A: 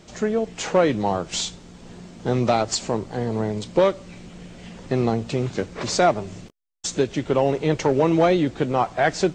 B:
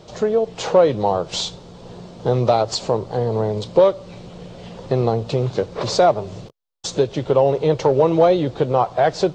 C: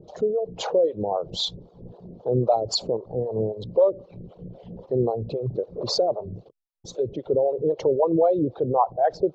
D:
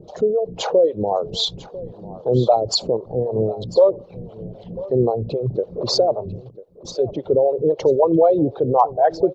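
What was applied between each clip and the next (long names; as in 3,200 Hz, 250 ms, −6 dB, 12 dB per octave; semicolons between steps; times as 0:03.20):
octave-band graphic EQ 125/250/500/1,000/2,000/4,000/8,000 Hz +8/−4/+10/+6/−5/+7/−5 dB; in parallel at 0 dB: downward compressor, threshold −18 dBFS, peak gain reduction 13.5 dB; on the sum: level −6.5 dB
spectral envelope exaggerated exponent 2; two-band tremolo in antiphase 3.8 Hz, depth 100%, crossover 510 Hz
single-tap delay 996 ms −18 dB; level +5 dB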